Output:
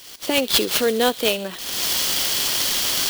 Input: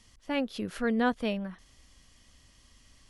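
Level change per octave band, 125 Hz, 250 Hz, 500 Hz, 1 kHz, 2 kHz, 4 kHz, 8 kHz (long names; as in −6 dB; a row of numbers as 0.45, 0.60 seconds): +4.0 dB, +3.0 dB, +12.0 dB, +8.5 dB, +11.5 dB, +25.0 dB, can't be measured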